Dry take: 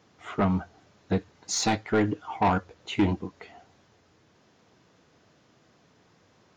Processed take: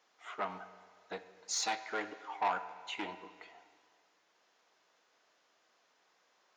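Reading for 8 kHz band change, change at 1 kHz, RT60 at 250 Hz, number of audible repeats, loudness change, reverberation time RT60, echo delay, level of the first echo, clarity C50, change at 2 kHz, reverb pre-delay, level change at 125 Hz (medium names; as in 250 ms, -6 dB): -6.5 dB, -7.5 dB, 2.0 s, no echo, -10.5 dB, 1.9 s, no echo, no echo, 12.5 dB, -6.5 dB, 11 ms, under -30 dB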